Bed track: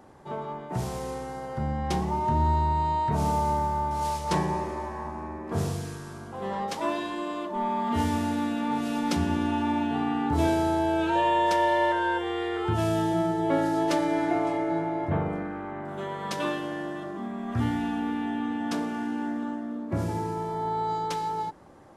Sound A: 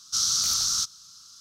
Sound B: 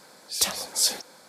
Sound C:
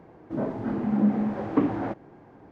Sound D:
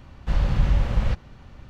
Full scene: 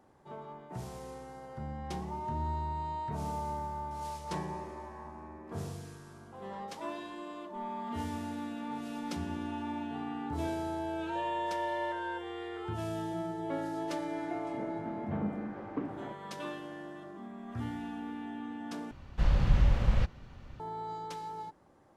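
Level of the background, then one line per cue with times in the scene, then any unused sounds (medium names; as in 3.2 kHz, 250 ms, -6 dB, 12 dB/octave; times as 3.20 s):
bed track -11 dB
14.20 s: add C -14 dB
18.91 s: replace with D -4.5 dB
not used: A, B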